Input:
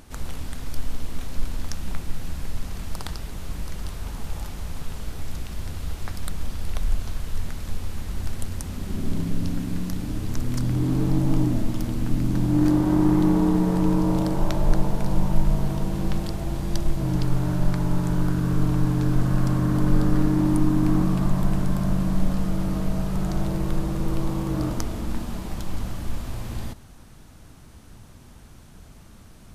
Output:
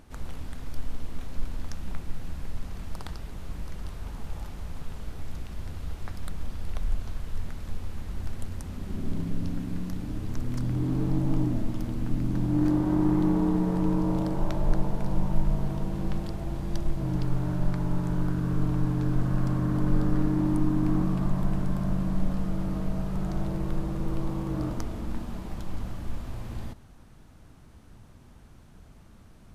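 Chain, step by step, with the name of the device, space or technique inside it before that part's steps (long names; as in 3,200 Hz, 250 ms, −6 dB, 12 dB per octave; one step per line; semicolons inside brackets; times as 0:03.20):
behind a face mask (high-shelf EQ 3,300 Hz −7.5 dB)
level −4.5 dB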